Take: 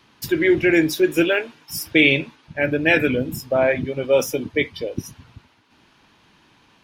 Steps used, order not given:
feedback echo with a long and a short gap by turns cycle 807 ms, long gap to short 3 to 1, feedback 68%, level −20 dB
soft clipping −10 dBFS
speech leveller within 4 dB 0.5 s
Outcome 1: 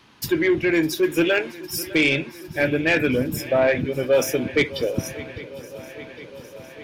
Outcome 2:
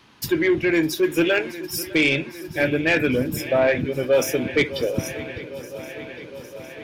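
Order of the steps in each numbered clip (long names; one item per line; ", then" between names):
speech leveller, then feedback echo with a long and a short gap by turns, then soft clipping
feedback echo with a long and a short gap by turns, then speech leveller, then soft clipping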